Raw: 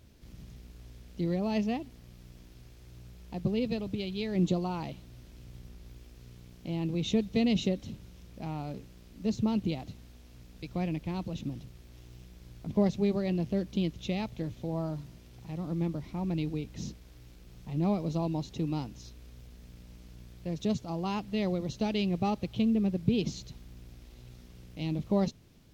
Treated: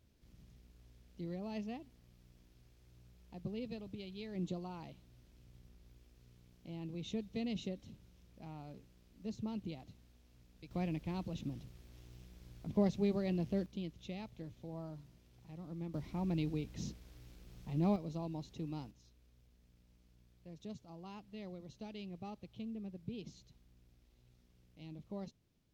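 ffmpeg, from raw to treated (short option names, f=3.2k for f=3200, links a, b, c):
-af "asetnsamples=n=441:p=0,asendcmd='10.71 volume volume -5.5dB;13.66 volume volume -12.5dB;15.94 volume volume -4dB;17.96 volume volume -10.5dB;18.91 volume volume -17.5dB',volume=-12.5dB"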